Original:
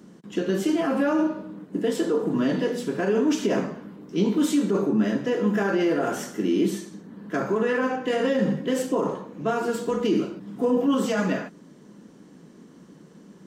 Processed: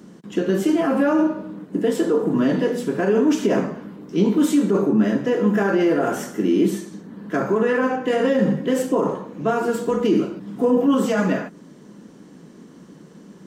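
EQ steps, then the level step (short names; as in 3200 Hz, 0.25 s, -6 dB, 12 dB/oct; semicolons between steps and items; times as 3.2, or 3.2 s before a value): dynamic EQ 4300 Hz, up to -5 dB, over -48 dBFS, Q 0.74; +4.5 dB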